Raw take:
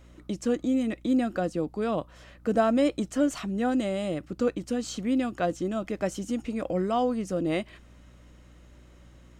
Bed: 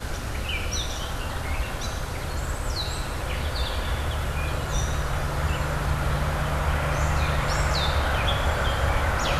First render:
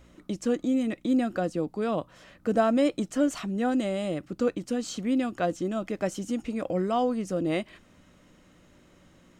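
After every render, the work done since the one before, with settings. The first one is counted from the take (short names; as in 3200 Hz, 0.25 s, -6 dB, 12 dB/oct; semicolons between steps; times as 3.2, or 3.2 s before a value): de-hum 60 Hz, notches 2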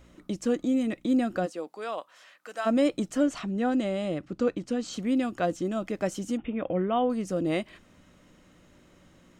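1.45–2.65 HPF 470 Hz -> 1300 Hz; 3.23–4.93 air absorption 52 m; 6.37–7.1 brick-wall FIR low-pass 3700 Hz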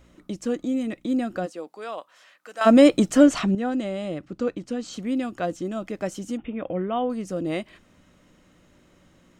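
2.61–3.55 gain +10 dB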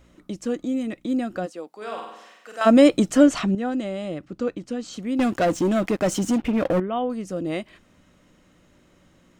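1.76–2.63 flutter echo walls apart 8.2 m, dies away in 0.9 s; 5.19–6.8 sample leveller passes 3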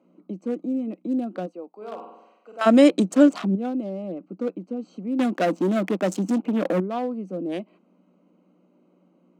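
Wiener smoothing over 25 samples; Chebyshev high-pass 180 Hz, order 5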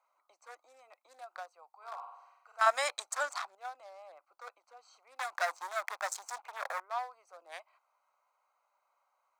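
steep high-pass 830 Hz 36 dB/oct; bell 2900 Hz -13.5 dB 0.43 oct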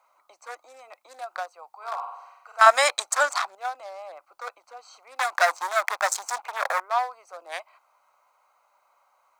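gain +12 dB; limiter -2 dBFS, peak gain reduction 1 dB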